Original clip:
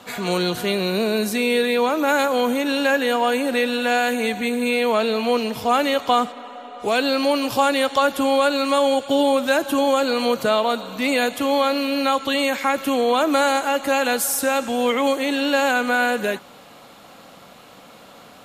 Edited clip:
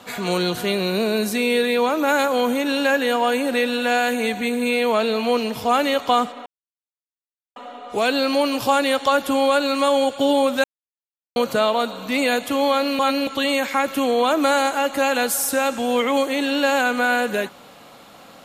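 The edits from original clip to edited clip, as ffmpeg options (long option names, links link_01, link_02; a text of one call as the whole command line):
ffmpeg -i in.wav -filter_complex "[0:a]asplit=6[link_01][link_02][link_03][link_04][link_05][link_06];[link_01]atrim=end=6.46,asetpts=PTS-STARTPTS,afade=type=out:start_time=6.456:duration=0.004:curve=hsin,apad=pad_dur=1.1[link_07];[link_02]atrim=start=6.46:end=9.54,asetpts=PTS-STARTPTS,afade=type=in:duration=0.004:curve=hsin,afade=type=out:start_time=3.076:duration=0.004:curve=hsin[link_08];[link_03]atrim=start=9.54:end=10.26,asetpts=PTS-STARTPTS,volume=0[link_09];[link_04]atrim=start=10.26:end=11.892,asetpts=PTS-STARTPTS,afade=type=in:duration=0.004:curve=hsin[link_10];[link_05]atrim=start=11.888:end=12.172,asetpts=PTS-STARTPTS,areverse[link_11];[link_06]atrim=start=12.168[link_12];[link_07][link_08][link_09][link_10]concat=n=4:v=0:a=1[link_13];[link_13][link_11]acrossfade=duration=0.004:curve1=hsin:curve2=hsin[link_14];[link_14][link_12]acrossfade=duration=0.004:curve1=hsin:curve2=hsin" out.wav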